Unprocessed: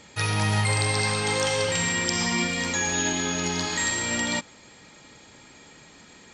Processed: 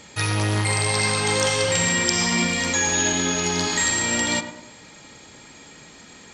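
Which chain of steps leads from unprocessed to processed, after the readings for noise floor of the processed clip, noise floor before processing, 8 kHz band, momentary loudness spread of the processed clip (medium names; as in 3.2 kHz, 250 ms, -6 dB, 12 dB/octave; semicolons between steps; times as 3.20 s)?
-46 dBFS, -51 dBFS, +5.5 dB, 4 LU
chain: treble shelf 6.3 kHz +4.5 dB; tape echo 104 ms, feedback 51%, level -8.5 dB, low-pass 1.6 kHz; transformer saturation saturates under 830 Hz; trim +3.5 dB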